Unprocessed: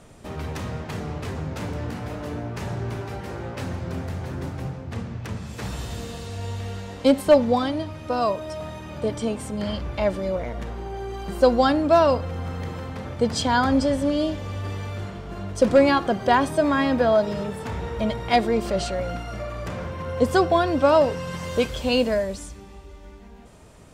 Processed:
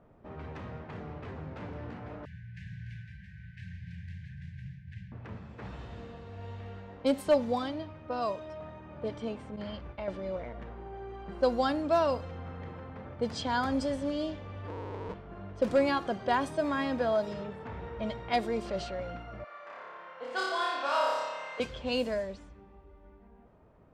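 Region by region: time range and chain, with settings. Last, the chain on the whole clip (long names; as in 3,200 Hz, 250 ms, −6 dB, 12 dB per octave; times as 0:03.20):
0:02.25–0:05.12: linear-phase brick-wall band-stop 200–1,500 Hz + high-shelf EQ 8,000 Hz +9.5 dB + single-tap delay 292 ms −13 dB
0:09.56–0:10.08: downward expander −28 dBFS + high-shelf EQ 4,200 Hz +5.5 dB + downward compressor, threshold −23 dBFS
0:14.68–0:15.14: comparator with hysteresis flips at −34 dBFS + hollow resonant body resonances 460/930 Hz, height 15 dB, ringing for 30 ms
0:19.44–0:21.60: high-pass filter 1,000 Hz + flutter between parallel walls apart 5 metres, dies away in 1.4 s
whole clip: low-pass that shuts in the quiet parts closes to 1,200 Hz, open at −15.5 dBFS; low-shelf EQ 220 Hz −3.5 dB; level −9 dB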